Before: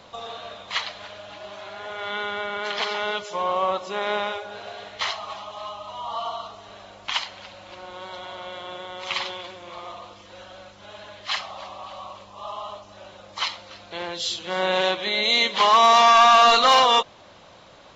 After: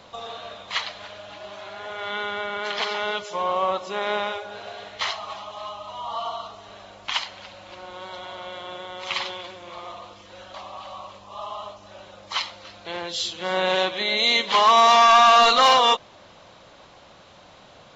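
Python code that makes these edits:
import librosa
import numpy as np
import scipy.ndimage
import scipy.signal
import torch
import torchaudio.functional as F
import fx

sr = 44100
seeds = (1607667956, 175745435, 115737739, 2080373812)

y = fx.edit(x, sr, fx.cut(start_s=10.54, length_s=1.06), tone=tone)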